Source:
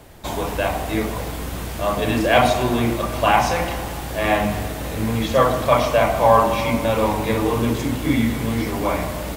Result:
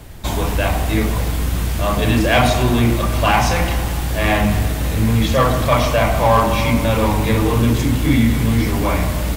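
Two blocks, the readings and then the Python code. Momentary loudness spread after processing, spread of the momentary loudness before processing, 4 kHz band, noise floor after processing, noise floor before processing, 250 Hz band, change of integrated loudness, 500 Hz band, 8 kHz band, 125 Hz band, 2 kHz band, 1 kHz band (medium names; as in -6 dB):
6 LU, 11 LU, +4.0 dB, -21 dBFS, -29 dBFS, +4.0 dB, +3.5 dB, 0.0 dB, +5.0 dB, +8.5 dB, +3.0 dB, +0.5 dB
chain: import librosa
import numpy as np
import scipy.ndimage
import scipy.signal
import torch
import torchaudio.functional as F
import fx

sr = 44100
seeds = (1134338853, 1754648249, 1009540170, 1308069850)

p1 = fx.low_shelf(x, sr, hz=130.0, db=7.5)
p2 = np.clip(p1, -10.0 ** (-16.5 / 20.0), 10.0 ** (-16.5 / 20.0))
p3 = p1 + (p2 * 10.0 ** (-3.5 / 20.0))
p4 = fx.peak_eq(p3, sr, hz=590.0, db=-5.0, octaves=2.1)
y = p4 * 10.0 ** (1.0 / 20.0)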